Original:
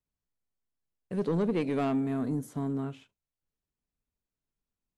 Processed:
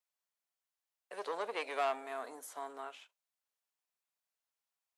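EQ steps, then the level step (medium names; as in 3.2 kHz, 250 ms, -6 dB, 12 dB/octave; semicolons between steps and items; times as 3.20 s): high-pass 630 Hz 24 dB/octave; +2.0 dB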